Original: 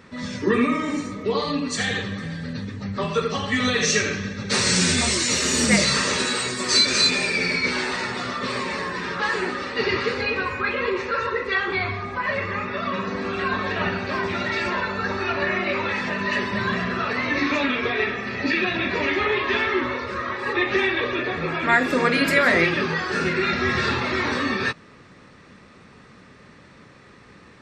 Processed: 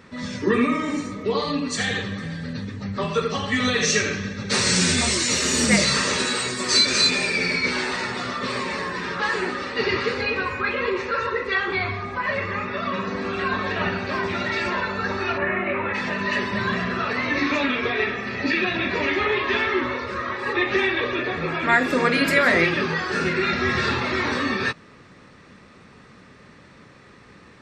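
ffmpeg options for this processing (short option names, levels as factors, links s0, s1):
-filter_complex "[0:a]asplit=3[s0][s1][s2];[s0]afade=t=out:st=15.37:d=0.02[s3];[s1]lowpass=f=2500:w=0.5412,lowpass=f=2500:w=1.3066,afade=t=in:st=15.37:d=0.02,afade=t=out:st=15.93:d=0.02[s4];[s2]afade=t=in:st=15.93:d=0.02[s5];[s3][s4][s5]amix=inputs=3:normalize=0"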